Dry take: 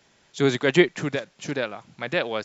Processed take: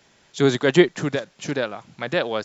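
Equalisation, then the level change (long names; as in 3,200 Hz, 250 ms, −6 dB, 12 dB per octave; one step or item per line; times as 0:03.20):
dynamic equaliser 2,300 Hz, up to −6 dB, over −40 dBFS, Q 2.4
+3.0 dB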